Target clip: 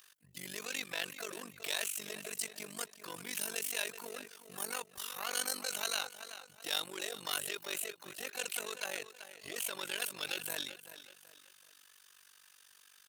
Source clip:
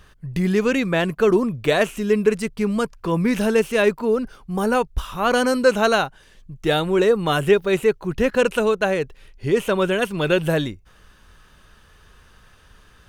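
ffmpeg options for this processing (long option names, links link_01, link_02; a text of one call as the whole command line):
ffmpeg -i in.wav -filter_complex "[0:a]asplit=2[link_01][link_02];[link_02]asoftclip=type=tanh:threshold=-21dB,volume=-3.5dB[link_03];[link_01][link_03]amix=inputs=2:normalize=0,highpass=61,aecho=1:1:380|760|1140:0.188|0.0659|0.0231,asplit=2[link_04][link_05];[link_05]asetrate=66075,aresample=44100,atempo=0.66742,volume=-13dB[link_06];[link_04][link_06]amix=inputs=2:normalize=0,acrossover=split=3000[link_07][link_08];[link_07]alimiter=limit=-12dB:level=0:latency=1:release=26[link_09];[link_09][link_08]amix=inputs=2:normalize=0,aderivative,tremolo=f=48:d=0.919" out.wav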